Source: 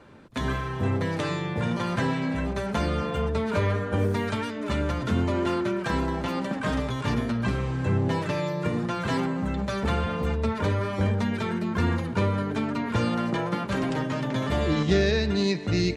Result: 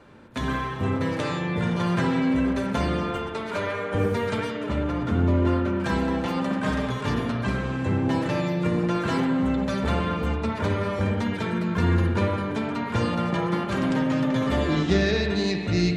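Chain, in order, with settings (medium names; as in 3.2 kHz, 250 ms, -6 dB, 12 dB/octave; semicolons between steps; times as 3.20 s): 3.17–3.95 s: high-pass 410 Hz 6 dB/octave; 4.66–5.80 s: treble shelf 2.5 kHz -10 dB; spring tank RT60 1.7 s, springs 57 ms, chirp 40 ms, DRR 3 dB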